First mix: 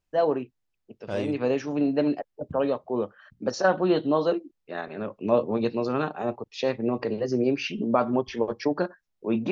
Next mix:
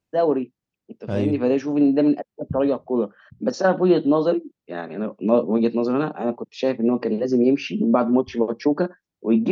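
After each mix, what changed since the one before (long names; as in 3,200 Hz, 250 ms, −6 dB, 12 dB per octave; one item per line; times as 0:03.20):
first voice: add high-pass filter 190 Hz 24 dB per octave
master: add parametric band 130 Hz +12.5 dB 2.8 octaves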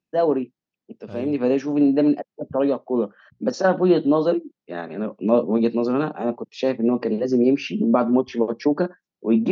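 second voice −9.5 dB
reverb: off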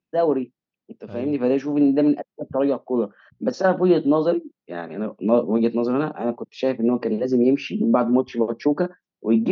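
master: add high-frequency loss of the air 72 metres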